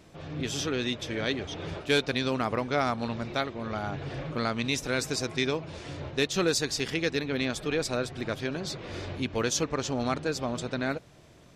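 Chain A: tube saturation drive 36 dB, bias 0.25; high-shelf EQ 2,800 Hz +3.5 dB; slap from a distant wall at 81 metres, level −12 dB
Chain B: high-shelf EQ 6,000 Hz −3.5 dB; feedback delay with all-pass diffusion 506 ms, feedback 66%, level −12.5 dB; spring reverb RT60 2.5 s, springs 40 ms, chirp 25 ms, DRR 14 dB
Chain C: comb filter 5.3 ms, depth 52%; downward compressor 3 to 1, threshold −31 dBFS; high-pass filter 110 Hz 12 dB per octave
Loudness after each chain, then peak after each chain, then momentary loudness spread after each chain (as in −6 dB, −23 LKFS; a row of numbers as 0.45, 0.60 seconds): −38.0, −30.0, −34.5 LKFS; −29.0, −13.5, −17.5 dBFS; 4, 8, 4 LU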